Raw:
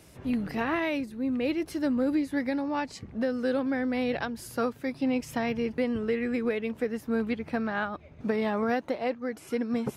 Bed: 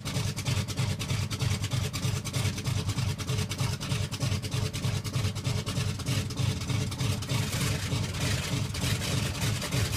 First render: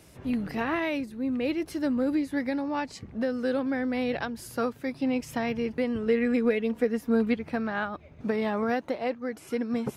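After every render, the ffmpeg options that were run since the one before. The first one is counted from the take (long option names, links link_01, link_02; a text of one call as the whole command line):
ffmpeg -i in.wav -filter_complex "[0:a]asettb=1/sr,asplit=3[link_01][link_02][link_03];[link_01]atrim=end=6.064[link_04];[link_02]atrim=start=6.06:end=7.36,asetpts=PTS-STARTPTS,afade=type=in:duration=0.004:curve=qsin,afade=type=out:start_time=1.296:duration=0.004:curve=qsin,aecho=1:1:4.2:0.68,atrim=end_sample=57330[link_05];[link_03]atrim=start=7.356[link_06];[link_04][link_05]acrossfade=duration=0.004:curve1=hsin:curve2=qsin[link_07];[link_07][link_06]acrossfade=duration=0.004:curve1=qsin:curve2=hsin" out.wav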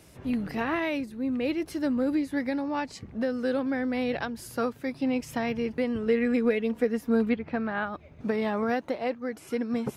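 ffmpeg -i in.wav -filter_complex "[0:a]asettb=1/sr,asplit=3[link_01][link_02][link_03];[link_01]atrim=end=7.294[link_04];[link_02]atrim=start=7.29:end=7.87,asetpts=PTS-STARTPTS,afade=type=in:duration=0.004:curve=qsin,afade=type=out:start_time=0.576:duration=0.004:curve=qsin,lowpass=3400[link_05];[link_03]atrim=start=7.866[link_06];[link_04][link_05]acrossfade=duration=0.004:curve1=hsin:curve2=qsin[link_07];[link_07][link_06]acrossfade=duration=0.004:curve1=qsin:curve2=hsin" out.wav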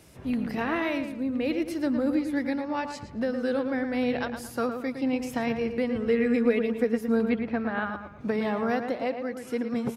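ffmpeg -i in.wav -filter_complex "[0:a]asplit=2[link_01][link_02];[link_02]adelay=112,lowpass=frequency=2800:poles=1,volume=-7dB,asplit=2[link_03][link_04];[link_04]adelay=112,lowpass=frequency=2800:poles=1,volume=0.38,asplit=2[link_05][link_06];[link_06]adelay=112,lowpass=frequency=2800:poles=1,volume=0.38,asplit=2[link_07][link_08];[link_08]adelay=112,lowpass=frequency=2800:poles=1,volume=0.38[link_09];[link_01][link_03][link_05][link_07][link_09]amix=inputs=5:normalize=0" out.wav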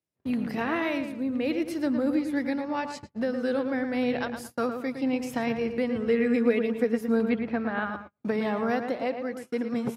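ffmpeg -i in.wav -af "agate=range=-37dB:threshold=-38dB:ratio=16:detection=peak,highpass=90" out.wav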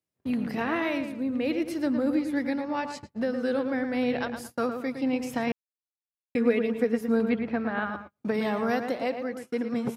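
ffmpeg -i in.wav -filter_complex "[0:a]asettb=1/sr,asplit=3[link_01][link_02][link_03];[link_01]atrim=end=8.344[link_04];[link_02]atrim=start=8.34:end=9.24,asetpts=PTS-STARTPTS,afade=type=in:duration=0.004:curve=qsin,afade=type=out:start_time=0.896:duration=0.004:curve=qsin,highshelf=frequency=5300:gain=9.5[link_05];[link_03]atrim=start=9.236[link_06];[link_04][link_05]acrossfade=duration=0.004:curve1=hsin:curve2=qsin[link_07];[link_07][link_06]acrossfade=duration=0.004:curve1=qsin:curve2=hsin,asplit=3[link_08][link_09][link_10];[link_08]atrim=end=5.52,asetpts=PTS-STARTPTS,afade=type=out:start_time=5.516:duration=0.004:curve=hsin[link_11];[link_09]atrim=start=5.52:end=6.35,asetpts=PTS-STARTPTS,volume=0[link_12];[link_10]atrim=start=6.35,asetpts=PTS-STARTPTS,afade=type=in:duration=0.004:curve=hsin[link_13];[link_11][link_12][link_13]concat=n=3:v=0:a=1" out.wav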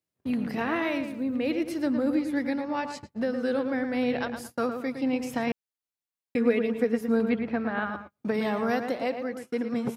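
ffmpeg -i in.wav -filter_complex "[0:a]asettb=1/sr,asplit=3[link_01][link_02][link_03];[link_01]atrim=end=0.604[link_04];[link_02]atrim=start=0.6:end=1.37,asetpts=PTS-STARTPTS,afade=type=in:duration=0.004:curve=qsin,afade=type=out:start_time=0.766:duration=0.004:curve=qsin,aeval=exprs='val(0)*gte(abs(val(0)),0.00158)':channel_layout=same[link_05];[link_03]atrim=start=1.366[link_06];[link_04][link_05]acrossfade=duration=0.004:curve1=hsin:curve2=qsin[link_07];[link_07][link_06]acrossfade=duration=0.004:curve1=qsin:curve2=hsin" out.wav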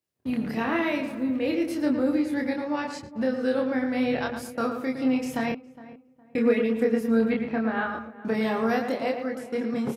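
ffmpeg -i in.wav -filter_complex "[0:a]asplit=2[link_01][link_02];[link_02]adelay=27,volume=-3dB[link_03];[link_01][link_03]amix=inputs=2:normalize=0,asplit=2[link_04][link_05];[link_05]adelay=412,lowpass=frequency=1500:poles=1,volume=-17dB,asplit=2[link_06][link_07];[link_07]adelay=412,lowpass=frequency=1500:poles=1,volume=0.29,asplit=2[link_08][link_09];[link_09]adelay=412,lowpass=frequency=1500:poles=1,volume=0.29[link_10];[link_04][link_06][link_08][link_10]amix=inputs=4:normalize=0" out.wav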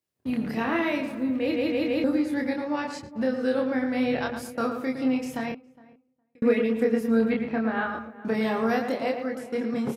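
ffmpeg -i in.wav -filter_complex "[0:a]asplit=6[link_01][link_02][link_03][link_04][link_05][link_06];[link_01]atrim=end=1.562[link_07];[link_02]atrim=start=1.398:end=1.562[link_08];[link_03]atrim=start=1.398:end=1.562[link_09];[link_04]atrim=start=1.398:end=1.562[link_10];[link_05]atrim=start=2.038:end=6.42,asetpts=PTS-STARTPTS,afade=type=out:start_time=2.932:duration=1.45[link_11];[link_06]atrim=start=6.42,asetpts=PTS-STARTPTS,afade=type=in:duration=0.004:curve=hsin[link_12];[link_07][link_08]acrossfade=duration=0.004:curve1=hsin:curve2=hsin[link_13];[link_13][link_09]acrossfade=duration=0.004:curve1=hsin:curve2=hsin[link_14];[link_14][link_10]acrossfade=duration=0.004:curve1=hsin:curve2=hsin[link_15];[link_11][link_12]concat=n=2:v=0:a=1[link_16];[link_15][link_16]acrossfade=duration=0.004:curve1=hsin:curve2=hsin" out.wav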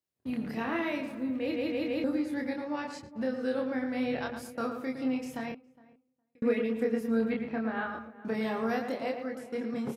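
ffmpeg -i in.wav -af "volume=-6dB" out.wav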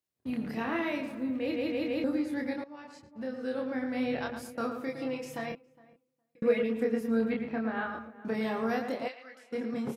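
ffmpeg -i in.wav -filter_complex "[0:a]asettb=1/sr,asplit=3[link_01][link_02][link_03];[link_01]atrim=end=4.884[link_04];[link_02]atrim=start=4.88:end=6.63,asetpts=PTS-STARTPTS,afade=type=in:duration=0.004:curve=qsin,afade=type=out:start_time=1.746:duration=0.004:curve=qsin,aecho=1:1:6:0.65,atrim=end_sample=77175[link_05];[link_03]atrim=start=6.626[link_06];[link_04][link_05]acrossfade=duration=0.004:curve1=hsin:curve2=qsin[link_07];[link_07][link_06]acrossfade=duration=0.004:curve1=qsin:curve2=hsin,asplit=3[link_08][link_09][link_10];[link_08]afade=type=out:start_time=9.07:duration=0.02[link_11];[link_09]bandpass=frequency=3200:width_type=q:width=0.88,afade=type=in:start_time=9.07:duration=0.02,afade=type=out:start_time=9.51:duration=0.02[link_12];[link_10]afade=type=in:start_time=9.51:duration=0.02[link_13];[link_11][link_12][link_13]amix=inputs=3:normalize=0,asplit=2[link_14][link_15];[link_14]atrim=end=2.64,asetpts=PTS-STARTPTS,afade=type=out:start_time=2.636:duration=0.004:curve=hsin:silence=0.16788[link_16];[link_15]atrim=start=2.64,asetpts=PTS-STARTPTS,afade=type=in:duration=1.33:silence=0.16788[link_17];[link_16][link_17]concat=n=2:v=0:a=1" out.wav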